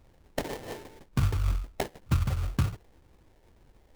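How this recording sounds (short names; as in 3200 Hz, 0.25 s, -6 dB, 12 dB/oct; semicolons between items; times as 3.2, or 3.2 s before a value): phasing stages 4, 2 Hz, lowest notch 190–1300 Hz; aliases and images of a low sample rate 1300 Hz, jitter 20%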